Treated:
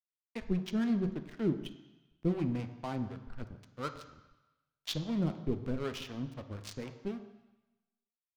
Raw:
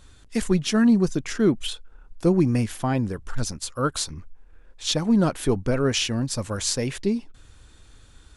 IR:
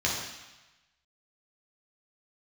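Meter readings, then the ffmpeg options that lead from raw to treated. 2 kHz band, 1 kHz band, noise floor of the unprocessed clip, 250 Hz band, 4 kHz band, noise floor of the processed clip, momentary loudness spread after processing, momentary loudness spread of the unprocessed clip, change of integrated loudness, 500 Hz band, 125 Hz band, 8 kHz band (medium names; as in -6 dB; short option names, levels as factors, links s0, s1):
-15.0 dB, -13.0 dB, -52 dBFS, -12.0 dB, -16.0 dB, under -85 dBFS, 16 LU, 11 LU, -12.5 dB, -13.5 dB, -11.5 dB, -25.0 dB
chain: -filter_complex "[0:a]adynamicsmooth=sensitivity=3:basefreq=650,aeval=exprs='sgn(val(0))*max(abs(val(0))-0.0188,0)':c=same,acrossover=split=420[s0][s1];[s0]aeval=exprs='val(0)*(1-0.7/2+0.7/2*cos(2*PI*4*n/s))':c=same[s2];[s1]aeval=exprs='val(0)*(1-0.7/2-0.7/2*cos(2*PI*4*n/s))':c=same[s3];[s2][s3]amix=inputs=2:normalize=0,asplit=2[s4][s5];[1:a]atrim=start_sample=2205,lowpass=6500[s6];[s5][s6]afir=irnorm=-1:irlink=0,volume=0.141[s7];[s4][s7]amix=inputs=2:normalize=0,volume=0.355"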